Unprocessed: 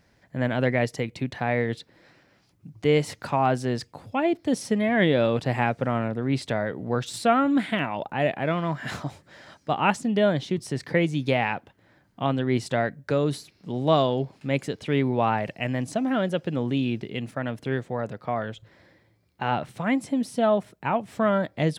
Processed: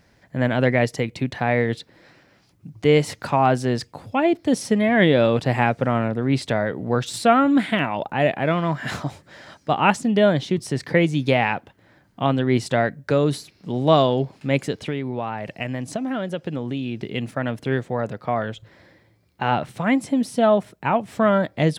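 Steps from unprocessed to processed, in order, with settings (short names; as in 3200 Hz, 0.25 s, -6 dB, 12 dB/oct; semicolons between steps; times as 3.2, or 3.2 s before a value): 14.77–17 compressor, threshold -28 dBFS, peak gain reduction 10.5 dB; gain +4.5 dB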